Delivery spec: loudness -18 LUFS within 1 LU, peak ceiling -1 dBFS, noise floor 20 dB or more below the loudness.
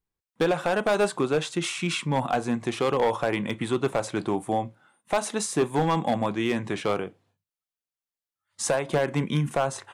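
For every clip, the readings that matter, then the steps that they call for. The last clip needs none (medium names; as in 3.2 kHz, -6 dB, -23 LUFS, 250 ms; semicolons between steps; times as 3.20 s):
clipped samples 1.4%; clipping level -16.5 dBFS; loudness -26.5 LUFS; peak level -16.5 dBFS; loudness target -18.0 LUFS
-> clip repair -16.5 dBFS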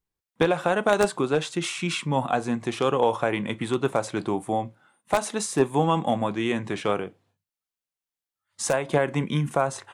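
clipped samples 0.0%; loudness -25.5 LUFS; peak level -7.5 dBFS; loudness target -18.0 LUFS
-> trim +7.5 dB; peak limiter -1 dBFS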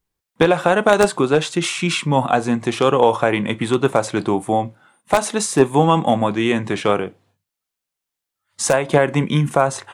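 loudness -18.0 LUFS; peak level -1.0 dBFS; noise floor -84 dBFS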